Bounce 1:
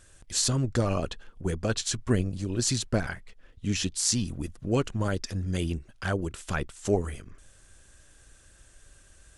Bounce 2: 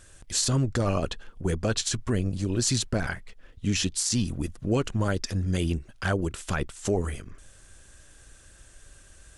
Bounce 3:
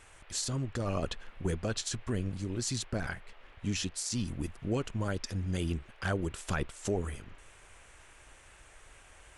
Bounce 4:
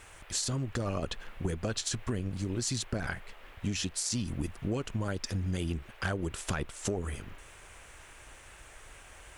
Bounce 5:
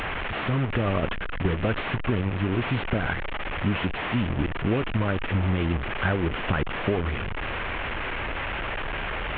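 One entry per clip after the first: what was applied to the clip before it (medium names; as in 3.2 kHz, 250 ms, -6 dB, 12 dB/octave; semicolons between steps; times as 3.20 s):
peak limiter -19 dBFS, peak gain reduction 11 dB; trim +3.5 dB
gain riding 0.5 s; band noise 350–2800 Hz -53 dBFS; trim -7 dB
bit crusher 12-bit; Chebyshev shaper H 3 -23 dB, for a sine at -19 dBFS; compression, threshold -35 dBFS, peak gain reduction 8 dB; trim +6.5 dB
one-bit delta coder 16 kbps, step -31.5 dBFS; trim +8 dB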